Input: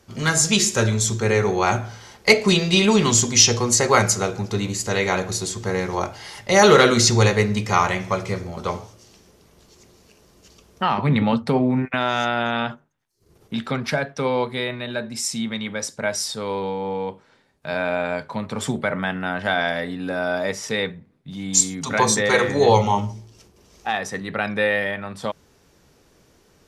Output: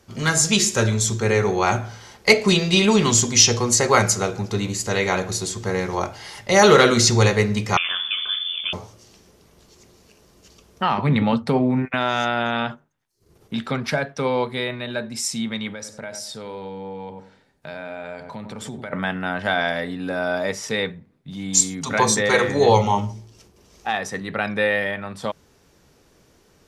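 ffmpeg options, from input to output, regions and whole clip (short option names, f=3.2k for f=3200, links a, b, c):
-filter_complex "[0:a]asettb=1/sr,asplit=3[a][b][c];[a]atrim=end=7.774[d];[b]atrim=start=7.77:end=8.73,asetpts=PTS-STARTPTS,afade=t=in:d=0.004:c=qsin,afade=t=out:st=0.956:d=0.004:c=qsin,lowshelf=f=210:g=8.5,acompressor=threshold=-22dB:ratio=2.5:attack=3.2:release=140:knee=1:detection=peak,lowpass=f=3.1k:t=q:w=0.5098,lowpass=f=3.1k:t=q:w=0.6013,lowpass=f=3.1k:t=q:w=0.9,lowpass=f=3.1k:t=q:w=2.563,afreqshift=-3600[e];[c]atrim=start=8.726[f];[d][e]acrossfade=d=0.004:c1=hsin:c2=qsin[g];[g][f]acrossfade=d=0.004:c1=qsin:c2=hsin,asettb=1/sr,asplit=3[h][i][j];[h]atrim=end=15.724[k];[i]atrim=start=15.72:end=18.93,asetpts=PTS-STARTPTS,afade=t=in:d=0.004:c=qsin,afade=t=out:st=3.206:d=0.004:c=qsin,asplit=2[l][m];[m]adelay=93,lowpass=f=970:p=1,volume=-9dB,asplit=2[n][o];[o]adelay=93,lowpass=f=970:p=1,volume=0.32,asplit=2[p][q];[q]adelay=93,lowpass=f=970:p=1,volume=0.32,asplit=2[r][s];[s]adelay=93,lowpass=f=970:p=1,volume=0.32[t];[l][n][p][r][t]amix=inputs=5:normalize=0,atrim=end_sample=141561,acompressor=threshold=-32dB:ratio=3:attack=3.2:release=140:knee=1:detection=peak,bandreject=f=1.1k:w=9.2[u];[j]atrim=start=18.926[v];[k][u]acrossfade=d=0.004:c1=hsin:c2=qsin[w];[w][v]acrossfade=d=0.004:c1=qsin:c2=hsin"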